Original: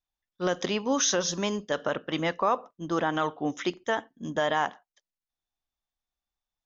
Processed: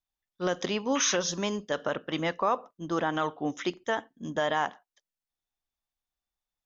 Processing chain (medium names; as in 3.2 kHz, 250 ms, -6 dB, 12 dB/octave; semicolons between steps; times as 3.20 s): painted sound noise, 0.95–1.17 s, 940–3400 Hz -34 dBFS; trim -1.5 dB